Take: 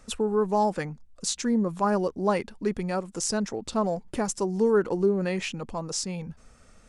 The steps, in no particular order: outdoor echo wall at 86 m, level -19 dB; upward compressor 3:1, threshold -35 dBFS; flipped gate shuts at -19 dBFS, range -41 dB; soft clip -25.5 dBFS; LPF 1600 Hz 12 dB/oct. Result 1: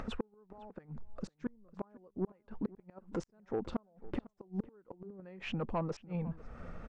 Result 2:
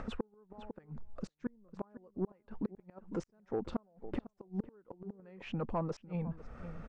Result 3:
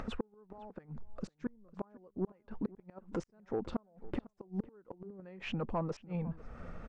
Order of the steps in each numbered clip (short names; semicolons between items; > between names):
flipped gate > LPF > upward compressor > soft clip > outdoor echo; flipped gate > outdoor echo > upward compressor > soft clip > LPF; flipped gate > soft clip > LPF > upward compressor > outdoor echo